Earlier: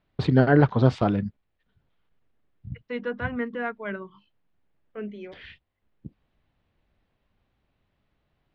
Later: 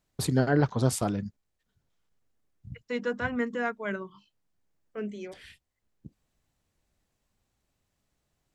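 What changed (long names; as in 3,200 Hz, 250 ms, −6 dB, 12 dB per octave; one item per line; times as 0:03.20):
first voice −6.0 dB
master: remove low-pass filter 3,500 Hz 24 dB per octave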